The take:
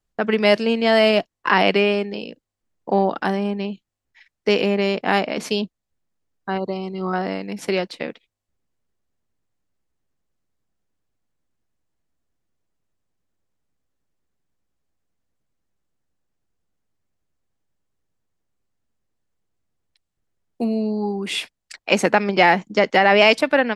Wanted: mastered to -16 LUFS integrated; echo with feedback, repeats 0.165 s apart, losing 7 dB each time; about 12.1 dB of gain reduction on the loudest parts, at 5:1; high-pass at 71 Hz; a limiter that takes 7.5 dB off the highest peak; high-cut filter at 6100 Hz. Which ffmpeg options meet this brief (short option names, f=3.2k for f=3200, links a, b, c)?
-af "highpass=71,lowpass=6.1k,acompressor=threshold=-24dB:ratio=5,alimiter=limit=-18.5dB:level=0:latency=1,aecho=1:1:165|330|495|660|825:0.447|0.201|0.0905|0.0407|0.0183,volume=13.5dB"